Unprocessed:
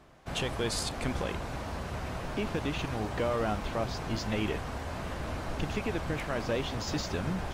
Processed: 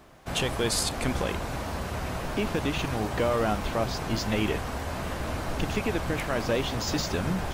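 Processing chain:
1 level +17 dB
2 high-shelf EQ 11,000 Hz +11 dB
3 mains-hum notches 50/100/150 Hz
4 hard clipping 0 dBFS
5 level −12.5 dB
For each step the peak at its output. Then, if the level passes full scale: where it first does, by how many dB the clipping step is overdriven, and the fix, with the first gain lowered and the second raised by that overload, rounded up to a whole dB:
−2.0, −2.0, −2.0, −2.0, −14.5 dBFS
no step passes full scale

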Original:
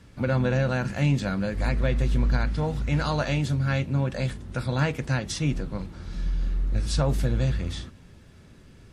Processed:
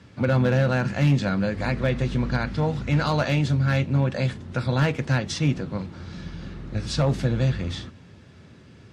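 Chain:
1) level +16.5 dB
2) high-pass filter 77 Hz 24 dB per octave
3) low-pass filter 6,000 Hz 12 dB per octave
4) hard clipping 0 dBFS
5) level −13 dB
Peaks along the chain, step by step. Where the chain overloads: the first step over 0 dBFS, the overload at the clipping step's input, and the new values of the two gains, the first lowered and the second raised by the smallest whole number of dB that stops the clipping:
+6.5, +7.0, +7.0, 0.0, −13.0 dBFS
step 1, 7.0 dB
step 1 +9.5 dB, step 5 −6 dB

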